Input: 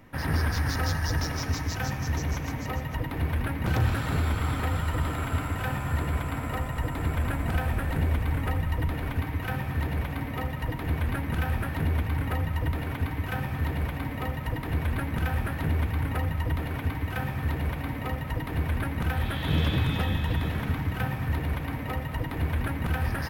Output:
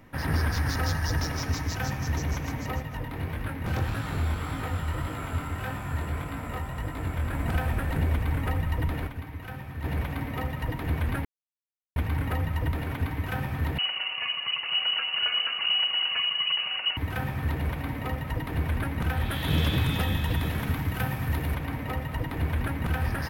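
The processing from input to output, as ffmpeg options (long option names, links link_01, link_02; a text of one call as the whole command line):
ffmpeg -i in.wav -filter_complex "[0:a]asettb=1/sr,asplit=3[link_01][link_02][link_03];[link_01]atrim=end=2.824[link_04];[link_02]atrim=start=2.82:end=7.35,asetpts=PTS-STARTPTS,afade=type=in:duration=0.004:curve=qsin,afade=type=out:start_time=4.526:duration=0.004:curve=qsin,flanger=delay=18.5:depth=6:speed=1.7[link_05];[link_03]atrim=start=7.346[link_06];[link_04][link_05]acrossfade=duration=0.004:curve1=hsin:curve2=qsin[link_07];[link_07][link_06]acrossfade=duration=0.004:curve1=qsin:curve2=hsin,asettb=1/sr,asplit=3[link_08][link_09][link_10];[link_08]atrim=end=13.784[link_11];[link_09]atrim=start=13.78:end=16.97,asetpts=PTS-STARTPTS,afade=type=in:duration=0.004:curve=qsin,afade=type=out:start_time=3.186:duration=0.004:curve=qsin,lowpass=frequency=2600:width_type=q:width=0.5098,lowpass=frequency=2600:width_type=q:width=0.6013,lowpass=frequency=2600:width_type=q:width=0.9,lowpass=frequency=2600:width_type=q:width=2.563,afreqshift=-3000[link_12];[link_10]atrim=start=16.966[link_13];[link_11][link_12]acrossfade=duration=0.004:curve1=hsin:curve2=qsin[link_14];[link_14][link_13]acrossfade=duration=0.004:curve1=qsin:curve2=hsin,asettb=1/sr,asplit=3[link_15][link_16][link_17];[link_15]atrim=end=19.314[link_18];[link_16]atrim=start=19.31:end=21.55,asetpts=PTS-STARTPTS,afade=type=in:duration=0.004:curve=qsin,afade=type=out:start_time=2.236:duration=0.004:curve=qsin,equalizer=frequency=13000:width_type=o:width=2:gain=7.5[link_19];[link_17]atrim=start=21.546[link_20];[link_18][link_19]acrossfade=duration=0.004:curve1=hsin:curve2=qsin[link_21];[link_21][link_20]acrossfade=duration=0.004:curve1=qsin:curve2=hsin,asplit=5[link_22][link_23][link_24][link_25][link_26];[link_22]atrim=end=9.072[link_27];[link_23]atrim=start=9.068:end=9.842,asetpts=PTS-STARTPTS,volume=-8dB[link_28];[link_24]atrim=start=9.838:end=11.25,asetpts=PTS-STARTPTS,afade=type=out:start_time=1.408:duration=0.004:curve=hsin[link_29];[link_25]atrim=start=11.25:end=11.96,asetpts=PTS-STARTPTS,volume=0[link_30];[link_26]atrim=start=11.96,asetpts=PTS-STARTPTS,afade=type=in:duration=0.004:curve=hsin[link_31];[link_27][link_28]acrossfade=duration=0.004:curve1=hsin:curve2=hsin[link_32];[link_29][link_30][link_31]concat=n=3:v=0:a=1[link_33];[link_32][link_33]acrossfade=duration=0.004:curve1=hsin:curve2=hsin" out.wav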